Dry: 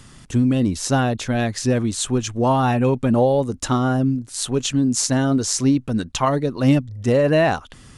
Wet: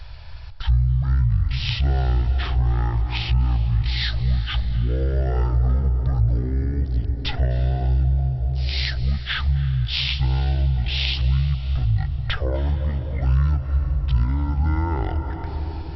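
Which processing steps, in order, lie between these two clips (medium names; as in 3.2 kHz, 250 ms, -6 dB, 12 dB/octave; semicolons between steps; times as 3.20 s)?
bass shelf 180 Hz +7.5 dB; plate-style reverb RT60 2.4 s, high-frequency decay 0.45×, pre-delay 115 ms, DRR 9 dB; speed mistake 15 ips tape played at 7.5 ips; compression 2:1, threshold -23 dBFS, peak gain reduction 9 dB; FFT filter 100 Hz 0 dB, 220 Hz -17 dB, 810 Hz -4 dB; trim +4.5 dB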